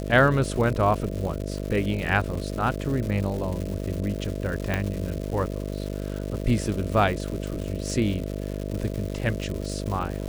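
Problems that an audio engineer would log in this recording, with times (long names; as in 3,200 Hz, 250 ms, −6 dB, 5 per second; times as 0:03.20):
mains buzz 50 Hz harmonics 13 −31 dBFS
surface crackle 280 per second −31 dBFS
0:02.35: drop-out 4.5 ms
0:04.74: click −11 dBFS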